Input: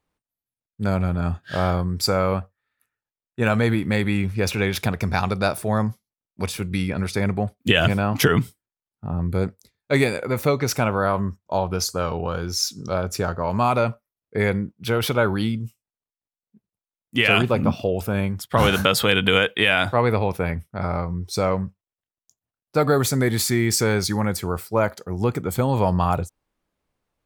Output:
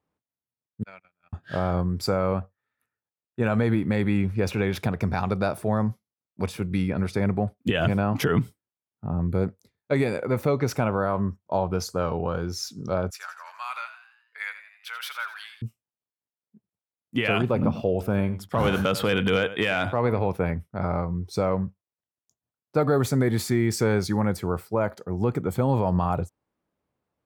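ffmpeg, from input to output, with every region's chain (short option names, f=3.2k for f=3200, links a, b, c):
-filter_complex "[0:a]asettb=1/sr,asplit=3[a][b][c];[a]atrim=end=0.834[d];[b]atrim=start=0.83:end=1.33,asetpts=PTS-STARTPTS,afade=t=in:d=0.004:c=qsin,afade=t=out:st=0.496:d=0.004:c=qsin,bandpass=f=2.4k:t=q:w=2.8,agate=range=-33dB:threshold=-42dB:ratio=16:release=100:detection=peak[e];[c]atrim=start=1.326[f];[d][e]acrossfade=d=0.004:c1=hsin:c2=qsin[g];[g][f]acrossfade=d=0.004:c1=qsin:c2=hsin,asettb=1/sr,asplit=3[h][i][j];[h]atrim=end=13.104[k];[i]atrim=start=13.1:end=15.62,asetpts=PTS-STARTPTS,afade=t=in:d=0.004:c=qsin,afade=t=out:st=2.516:d=0.004:c=qsin,highpass=f=1.4k:w=0.5412,highpass=f=1.4k:w=1.3066,asplit=7[l][m][n][o][p][q][r];[m]adelay=84,afreqshift=70,volume=-11.5dB[s];[n]adelay=168,afreqshift=140,volume=-17dB[t];[o]adelay=252,afreqshift=210,volume=-22.5dB[u];[p]adelay=336,afreqshift=280,volume=-28dB[v];[q]adelay=420,afreqshift=350,volume=-33.6dB[w];[r]adelay=504,afreqshift=420,volume=-39.1dB[x];[l][s][t][u][v][w][x]amix=inputs=7:normalize=0,atrim=end_sample=111132[y];[j]atrim=start=15.616[z];[k][y]acrossfade=d=0.004:c1=hsin:c2=qsin[aa];[aa][z]acrossfade=d=0.004:c1=qsin:c2=hsin,asettb=1/sr,asplit=3[ab][ac][ad];[ab]atrim=end=17.524[ae];[ac]atrim=start=17.52:end=20.28,asetpts=PTS-STARTPTS,afade=t=in:d=0.004:c=qsin,afade=t=out:st=2.756:d=0.004:c=qsin,aecho=1:1:95:0.15,atrim=end_sample=121716,volume=7.5dB,asoftclip=hard,volume=-7.5dB[af];[ad]atrim=start=20.276[ag];[ae][af]acrossfade=d=0.004:c1=hsin:c2=qsin[ah];[ah][ag]acrossfade=d=0.004:c1=qsin:c2=hsin,highpass=82,highshelf=f=2k:g=-11,alimiter=limit=-12dB:level=0:latency=1:release=86"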